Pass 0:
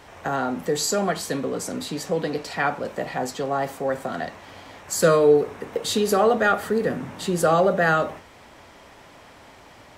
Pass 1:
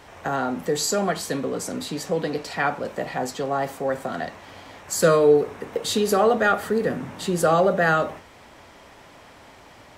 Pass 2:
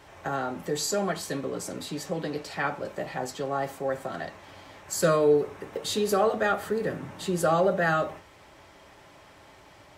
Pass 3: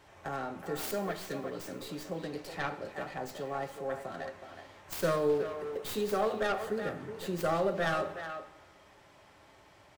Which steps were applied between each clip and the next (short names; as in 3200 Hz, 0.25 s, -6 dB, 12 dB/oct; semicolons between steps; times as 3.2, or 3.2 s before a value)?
nothing audible
notch comb 240 Hz; gain -3.5 dB
tracing distortion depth 0.28 ms; speakerphone echo 0.37 s, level -8 dB; plate-style reverb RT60 1.3 s, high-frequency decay 0.9×, DRR 13.5 dB; gain -7 dB